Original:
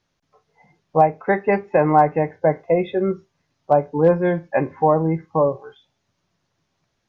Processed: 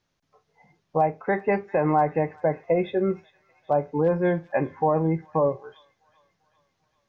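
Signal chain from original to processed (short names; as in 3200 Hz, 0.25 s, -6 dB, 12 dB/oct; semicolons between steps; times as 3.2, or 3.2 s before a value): thin delay 0.394 s, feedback 55%, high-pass 2300 Hz, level -17 dB; limiter -9.5 dBFS, peak gain reduction 4.5 dB; gain -3 dB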